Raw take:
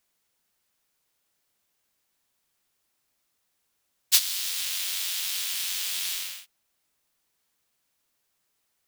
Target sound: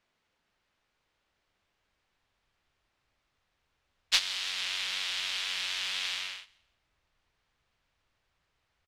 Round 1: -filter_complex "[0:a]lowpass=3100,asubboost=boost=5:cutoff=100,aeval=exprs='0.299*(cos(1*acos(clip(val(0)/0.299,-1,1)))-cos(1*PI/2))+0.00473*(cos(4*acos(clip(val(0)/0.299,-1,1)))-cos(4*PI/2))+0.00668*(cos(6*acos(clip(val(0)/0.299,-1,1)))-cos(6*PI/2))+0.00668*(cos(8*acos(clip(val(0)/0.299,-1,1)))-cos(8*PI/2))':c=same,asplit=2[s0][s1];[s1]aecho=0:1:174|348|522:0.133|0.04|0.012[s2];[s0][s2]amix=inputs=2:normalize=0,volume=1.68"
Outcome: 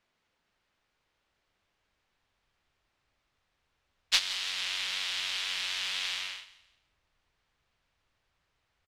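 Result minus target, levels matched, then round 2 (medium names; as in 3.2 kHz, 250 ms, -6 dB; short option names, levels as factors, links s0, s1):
echo-to-direct +8.5 dB
-filter_complex "[0:a]lowpass=3100,asubboost=boost=5:cutoff=100,aeval=exprs='0.299*(cos(1*acos(clip(val(0)/0.299,-1,1)))-cos(1*PI/2))+0.00473*(cos(4*acos(clip(val(0)/0.299,-1,1)))-cos(4*PI/2))+0.00668*(cos(6*acos(clip(val(0)/0.299,-1,1)))-cos(6*PI/2))+0.00668*(cos(8*acos(clip(val(0)/0.299,-1,1)))-cos(8*PI/2))':c=same,asplit=2[s0][s1];[s1]aecho=0:1:174|348:0.0501|0.015[s2];[s0][s2]amix=inputs=2:normalize=0,volume=1.68"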